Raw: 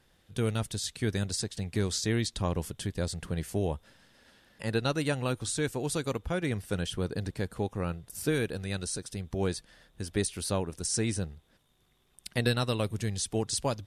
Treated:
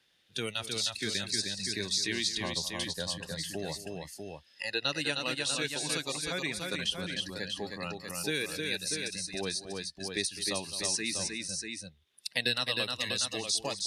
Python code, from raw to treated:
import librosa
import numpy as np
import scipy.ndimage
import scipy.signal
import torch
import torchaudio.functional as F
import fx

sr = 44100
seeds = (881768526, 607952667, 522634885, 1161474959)

p1 = fx.weighting(x, sr, curve='D')
p2 = fx.noise_reduce_blind(p1, sr, reduce_db=16)
p3 = fx.notch(p2, sr, hz=7600.0, q=11.0)
p4 = p3 + fx.echo_multitap(p3, sr, ms=(208, 310, 642), db=(-16.0, -5.0, -8.0), dry=0)
p5 = fx.band_squash(p4, sr, depth_pct=40)
y = F.gain(torch.from_numpy(p5), -5.0).numpy()